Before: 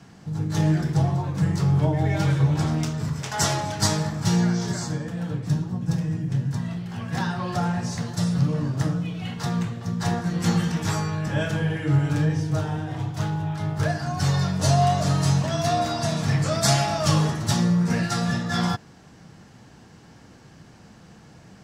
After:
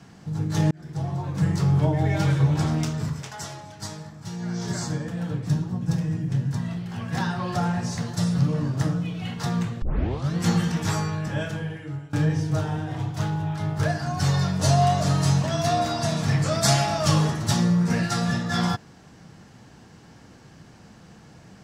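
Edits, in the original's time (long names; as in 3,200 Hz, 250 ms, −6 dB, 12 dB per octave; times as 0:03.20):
0:00.71–0:01.44: fade in
0:03.03–0:04.78: duck −13.5 dB, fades 0.39 s
0:09.82: tape start 0.54 s
0:11.03–0:12.13: fade out, to −23.5 dB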